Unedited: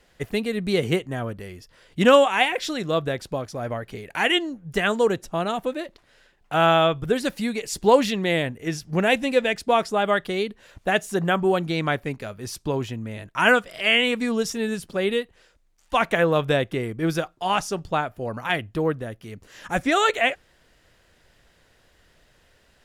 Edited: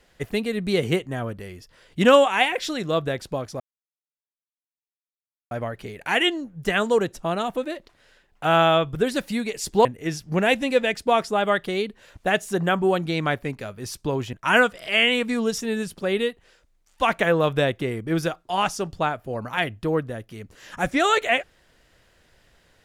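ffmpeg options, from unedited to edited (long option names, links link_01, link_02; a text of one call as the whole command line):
ffmpeg -i in.wav -filter_complex "[0:a]asplit=4[link_01][link_02][link_03][link_04];[link_01]atrim=end=3.6,asetpts=PTS-STARTPTS,afade=type=out:start_time=3.596:duration=0.004:curve=hsin,apad=pad_dur=1.91[link_05];[link_02]atrim=start=3.6:end=7.942,asetpts=PTS-STARTPTS,afade=type=in:duration=0.004:curve=hsin[link_06];[link_03]atrim=start=8.458:end=12.942[link_07];[link_04]atrim=start=13.248[link_08];[link_05][link_06]concat=n=2:v=0:a=1[link_09];[link_09][link_07]acrossfade=duration=0.004:curve1=hsin:curve2=hsin[link_10];[link_10][link_08]acrossfade=duration=0.004:curve1=hsin:curve2=hsin" out.wav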